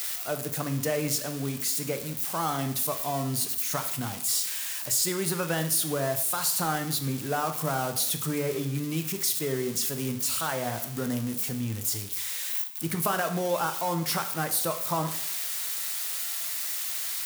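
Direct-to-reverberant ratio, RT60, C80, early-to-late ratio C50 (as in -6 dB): 7.0 dB, 0.65 s, 14.0 dB, 11.0 dB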